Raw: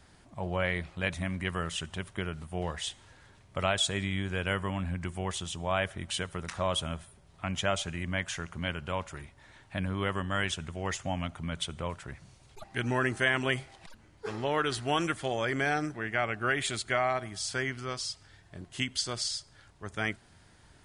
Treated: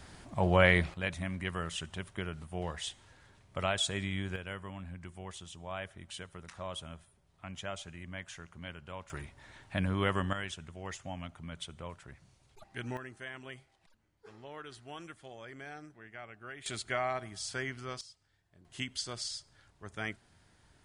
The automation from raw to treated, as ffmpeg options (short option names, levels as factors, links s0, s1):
-af "asetnsamples=n=441:p=0,asendcmd='0.94 volume volume -3.5dB;4.36 volume volume -11dB;9.1 volume volume 1dB;10.33 volume volume -8.5dB;12.97 volume volume -17.5dB;16.66 volume volume -5dB;18.01 volume volume -18dB;18.65 volume volume -6dB',volume=2.11"